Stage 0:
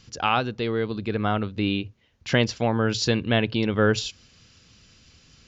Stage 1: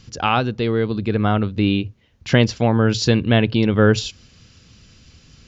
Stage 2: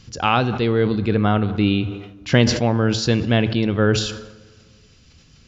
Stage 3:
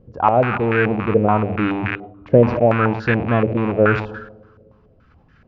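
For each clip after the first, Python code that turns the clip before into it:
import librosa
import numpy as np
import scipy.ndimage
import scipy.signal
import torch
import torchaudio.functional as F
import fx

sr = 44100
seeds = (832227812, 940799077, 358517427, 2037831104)

y1 = fx.low_shelf(x, sr, hz=340.0, db=6.0)
y1 = y1 * librosa.db_to_amplitude(3.0)
y2 = fx.rider(y1, sr, range_db=10, speed_s=0.5)
y2 = fx.rev_plate(y2, sr, seeds[0], rt60_s=1.8, hf_ratio=0.55, predelay_ms=0, drr_db=15.5)
y2 = fx.sustainer(y2, sr, db_per_s=68.0)
y2 = y2 * librosa.db_to_amplitude(-1.5)
y3 = fx.rattle_buzz(y2, sr, strikes_db=-28.0, level_db=-9.0)
y3 = fx.hum_notches(y3, sr, base_hz=50, count=4)
y3 = fx.filter_held_lowpass(y3, sr, hz=7.0, low_hz=530.0, high_hz=1600.0)
y3 = y3 * librosa.db_to_amplitude(-1.0)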